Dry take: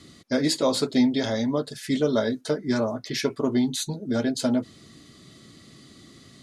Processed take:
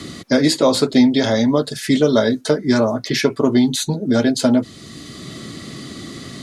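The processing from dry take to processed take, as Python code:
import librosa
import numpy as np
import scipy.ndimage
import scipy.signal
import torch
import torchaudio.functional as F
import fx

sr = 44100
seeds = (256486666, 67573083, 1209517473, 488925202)

y = fx.band_squash(x, sr, depth_pct=40)
y = y * 10.0 ** (8.5 / 20.0)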